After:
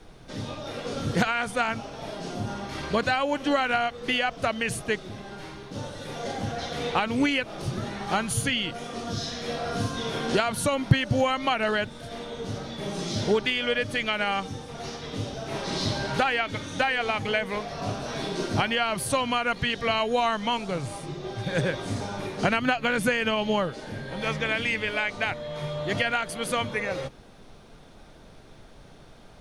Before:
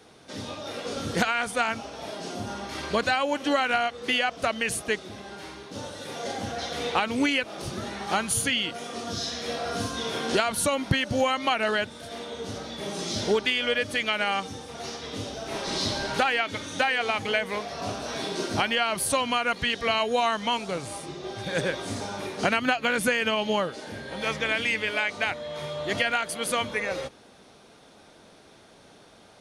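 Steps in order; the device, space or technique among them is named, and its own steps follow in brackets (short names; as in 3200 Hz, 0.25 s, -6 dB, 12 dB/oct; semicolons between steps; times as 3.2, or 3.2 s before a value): car interior (bell 130 Hz +9 dB 0.87 oct; high shelf 4500 Hz -5 dB; brown noise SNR 23 dB)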